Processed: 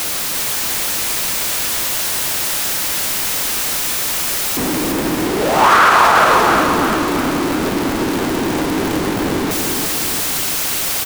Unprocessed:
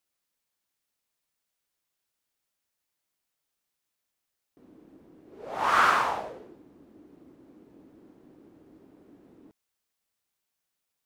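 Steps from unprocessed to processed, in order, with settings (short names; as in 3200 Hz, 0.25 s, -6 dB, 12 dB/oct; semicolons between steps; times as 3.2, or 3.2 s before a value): zero-crossing step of -28.5 dBFS; feedback echo 0.348 s, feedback 53%, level -5 dB; maximiser +15.5 dB; gain -1 dB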